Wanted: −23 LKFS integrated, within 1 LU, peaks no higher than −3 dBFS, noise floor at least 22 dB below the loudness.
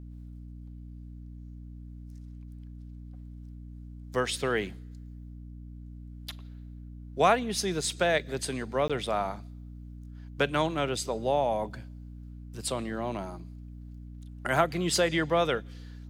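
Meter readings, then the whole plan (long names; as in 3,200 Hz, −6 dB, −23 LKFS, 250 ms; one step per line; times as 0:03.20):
number of dropouts 1; longest dropout 16 ms; mains hum 60 Hz; hum harmonics up to 300 Hz; level of the hum −41 dBFS; integrated loudness −29.0 LKFS; sample peak −9.5 dBFS; target loudness −23.0 LKFS
→ repair the gap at 0:08.88, 16 ms
hum removal 60 Hz, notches 5
level +6 dB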